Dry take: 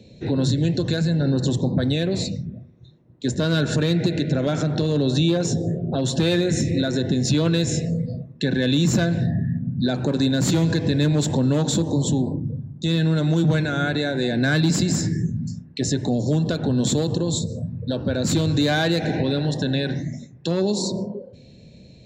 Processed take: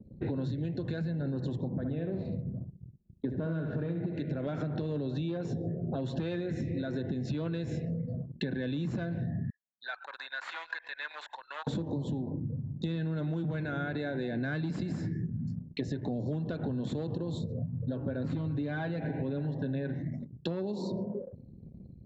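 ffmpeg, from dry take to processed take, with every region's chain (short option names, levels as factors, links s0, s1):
-filter_complex "[0:a]asettb=1/sr,asplit=3[s0][s1][s2];[s0]atrim=end=1.684[s3];[s1]atrim=start=1.68:end=4.16,asetpts=PTS-STARTPTS,afade=t=in:d=0.004:c=qsin,afade=t=out:st=2.476:d=0.004:c=qsin,lowpass=f=1400:p=1,aemphasis=mode=reproduction:type=50fm,aecho=1:1:68|136|204|272|340:0.473|0.185|0.072|0.0281|0.0109,atrim=end_sample=109368[s4];[s2]atrim=start=4.156[s5];[s3][s4]acrossfade=d=0.004:c1=hsin:c2=qsin[s6];[s6][s5]acrossfade=d=0.004:c1=qsin:c2=hsin,asettb=1/sr,asplit=3[s7][s8][s9];[s7]atrim=end=9.504[s10];[s8]atrim=start=9.5:end=11.67,asetpts=PTS-STARTPTS,afade=t=in:d=0.004:c=qsin,afade=t=out:st=2.166:d=0.004:c=qsin,highpass=f=1100:w=0.5412,highpass=f=1100:w=1.3066,acrossover=split=2700[s11][s12];[s12]acompressor=threshold=0.01:ratio=4:attack=1:release=60[s13];[s11][s13]amix=inputs=2:normalize=0[s14];[s9]atrim=start=11.666[s15];[s10][s14]acrossfade=d=0.004:c1=hsin:c2=qsin[s16];[s16][s15]acrossfade=d=0.004:c1=qsin:c2=hsin,asettb=1/sr,asplit=3[s17][s18][s19];[s17]atrim=end=17.524[s20];[s18]atrim=start=17.52:end=19.94,asetpts=PTS-STARTPTS,afade=t=in:d=0.004:c=qsin,afade=t=out:st=2.416:d=0.004:c=qsin,lowpass=f=1900:p=1,aecho=1:1:7.3:0.52,atrim=end_sample=106722[s21];[s19]atrim=start=19.936[s22];[s20][s21]acrossfade=d=0.004:c1=hsin:c2=qsin[s23];[s23][s22]acrossfade=d=0.004:c1=qsin:c2=hsin,anlmdn=0.251,lowpass=2300,acompressor=threshold=0.0282:ratio=8"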